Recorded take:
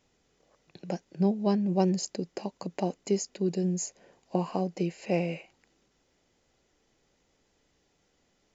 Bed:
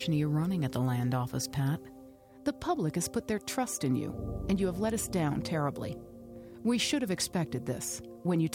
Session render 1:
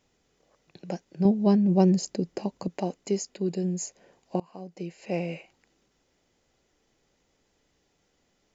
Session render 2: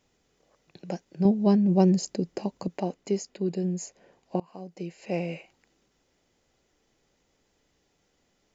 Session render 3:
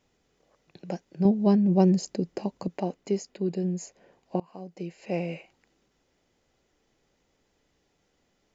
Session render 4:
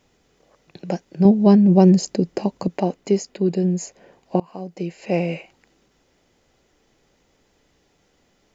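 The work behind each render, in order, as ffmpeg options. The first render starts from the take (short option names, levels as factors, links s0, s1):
-filter_complex "[0:a]asettb=1/sr,asplit=3[s0][s1][s2];[s0]atrim=end=1.254[s3];[s1]atrim=start=1.25:end=2.68,asetpts=PTS-STARTPTS,afade=t=in:d=0.004:c=qsin,afade=t=out:st=1.426:d=0.004:c=qsin,lowshelf=f=400:g=7.5[s4];[s2]atrim=start=2.676[s5];[s3][s4]acrossfade=d=0.004:c1=hsin:c2=qsin[s6];[s6][s5]acrossfade=d=0.004:c1=qsin:c2=hsin,asettb=1/sr,asplit=3[s7][s8][s9];[s7]atrim=end=3.324[s10];[s8]atrim=start=3.32:end=3.81,asetpts=PTS-STARTPTS,afade=t=in:d=0.004:c=qsin,afade=t=out:st=0.486:d=0.004:c=qsin,bandreject=f=5900:w=5.5[s11];[s9]atrim=start=3.806[s12];[s10][s11]acrossfade=d=0.004:c1=hsin:c2=qsin[s13];[s13][s12]acrossfade=d=0.004:c1=qsin:c2=hsin,asplit=2[s14][s15];[s14]atrim=end=4.4,asetpts=PTS-STARTPTS,afade=t=out:st=4.396:d=0.004:c=hsin:silence=0.0668344[s16];[s15]atrim=start=4.4,asetpts=PTS-STARTPTS,afade=t=in:d=0.97:silence=0.0668344[s17];[s16][s17]concat=n=2:v=0:a=1"
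-filter_complex "[0:a]asettb=1/sr,asplit=3[s0][s1][s2];[s0]atrim=end=2.784[s3];[s1]atrim=start=2.78:end=4.48,asetpts=PTS-STARTPTS,afade=t=in:d=0.004:c=qsin,afade=t=out:st=1.696:d=0.004:c=qsin,highshelf=f=6200:g=-8[s4];[s2]atrim=start=4.476[s5];[s3][s4]acrossfade=d=0.004:c1=hsin:c2=qsin[s6];[s6][s5]acrossfade=d=0.004:c1=qsin:c2=hsin"
-af "highshelf=f=5900:g=-5.5"
-af "volume=2.66,alimiter=limit=0.794:level=0:latency=1"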